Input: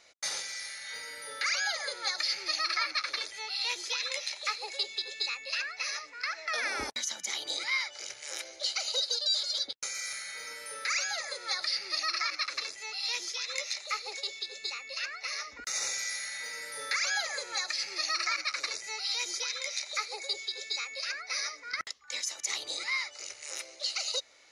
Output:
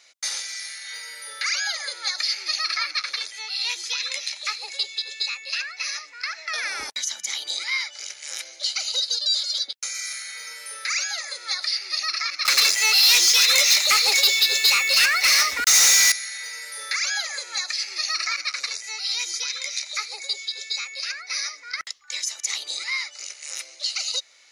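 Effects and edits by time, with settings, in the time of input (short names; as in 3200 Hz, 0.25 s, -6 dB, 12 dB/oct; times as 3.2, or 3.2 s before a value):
12.45–16.12 sample leveller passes 5
whole clip: tilt shelf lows -7 dB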